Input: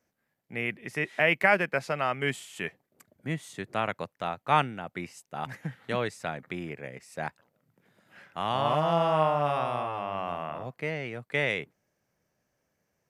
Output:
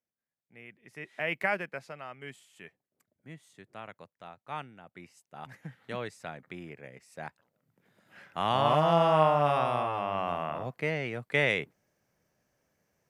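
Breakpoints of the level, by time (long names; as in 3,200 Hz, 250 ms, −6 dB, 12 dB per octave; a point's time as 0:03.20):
0:00.69 −18.5 dB
0:01.41 −6 dB
0:02.04 −15 dB
0:04.61 −15 dB
0:05.77 −7 dB
0:07.26 −7 dB
0:08.46 +1.5 dB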